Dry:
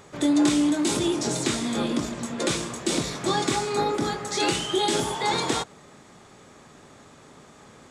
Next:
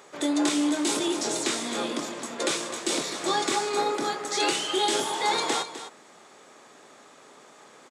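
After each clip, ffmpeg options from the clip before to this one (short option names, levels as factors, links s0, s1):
-af "highpass=360,aecho=1:1:255:0.251"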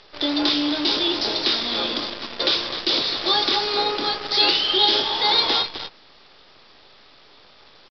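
-af "lowshelf=f=190:g=-6.5,aexciter=amount=3.3:drive=6.7:freq=3100,aresample=11025,acrusher=bits=6:dc=4:mix=0:aa=0.000001,aresample=44100,volume=1.33"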